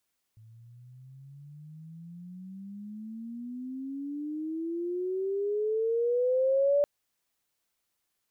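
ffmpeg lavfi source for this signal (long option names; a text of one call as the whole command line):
ffmpeg -f lavfi -i "aevalsrc='pow(10,(-20.5+29.5*(t/6.47-1))/20)*sin(2*PI*109*6.47/(29*log(2)/12)*(exp(29*log(2)/12*t/6.47)-1))':duration=6.47:sample_rate=44100" out.wav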